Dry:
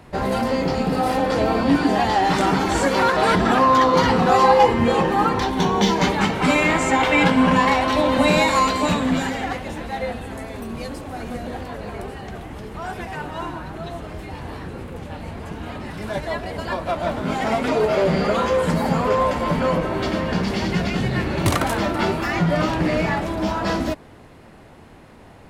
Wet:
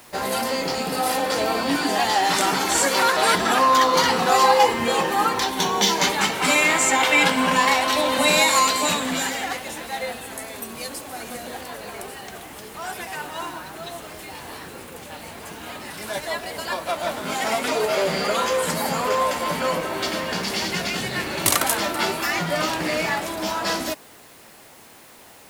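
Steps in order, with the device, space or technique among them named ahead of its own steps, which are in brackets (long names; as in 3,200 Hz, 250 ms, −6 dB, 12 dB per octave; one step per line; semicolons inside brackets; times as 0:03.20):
turntable without a phono preamp (RIAA equalisation recording; white noise bed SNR 29 dB)
level −1 dB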